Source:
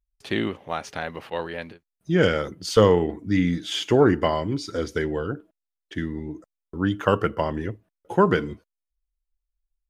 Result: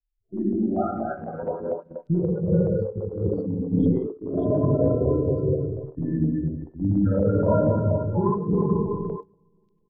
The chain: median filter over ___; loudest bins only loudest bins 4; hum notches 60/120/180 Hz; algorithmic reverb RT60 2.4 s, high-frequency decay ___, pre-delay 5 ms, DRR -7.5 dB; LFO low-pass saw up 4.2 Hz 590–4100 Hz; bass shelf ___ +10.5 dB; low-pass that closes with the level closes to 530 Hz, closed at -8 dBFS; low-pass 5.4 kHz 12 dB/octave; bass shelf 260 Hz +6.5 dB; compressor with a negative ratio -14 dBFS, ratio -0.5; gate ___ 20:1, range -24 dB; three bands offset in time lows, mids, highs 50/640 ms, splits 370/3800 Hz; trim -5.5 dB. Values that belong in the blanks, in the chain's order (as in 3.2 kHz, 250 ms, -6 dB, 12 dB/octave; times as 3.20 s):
15 samples, 0.45×, 130 Hz, -22 dBFS